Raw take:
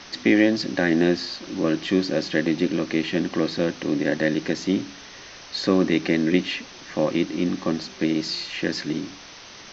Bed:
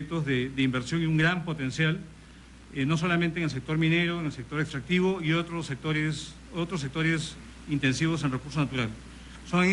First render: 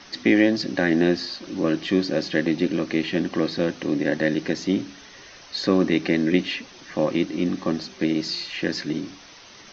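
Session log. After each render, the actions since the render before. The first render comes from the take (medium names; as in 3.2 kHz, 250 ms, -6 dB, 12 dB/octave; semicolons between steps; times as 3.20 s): noise reduction 6 dB, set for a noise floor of -43 dBFS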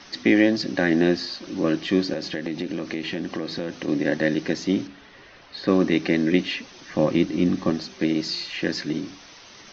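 2.13–3.88 s: compression 5:1, threshold -24 dBFS; 4.87–5.68 s: distance through air 230 m; 6.94–7.70 s: bass shelf 180 Hz +8.5 dB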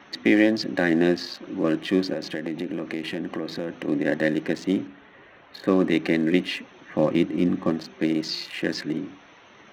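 local Wiener filter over 9 samples; high-pass 130 Hz 6 dB/octave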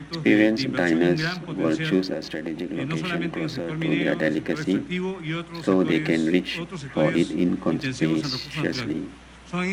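add bed -3 dB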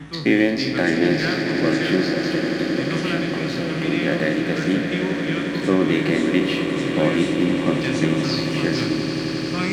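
spectral sustain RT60 0.42 s; echo with a slow build-up 88 ms, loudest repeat 8, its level -12.5 dB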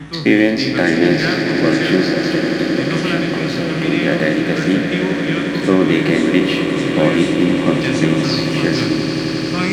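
trim +5 dB; peak limiter -1 dBFS, peak gain reduction 1 dB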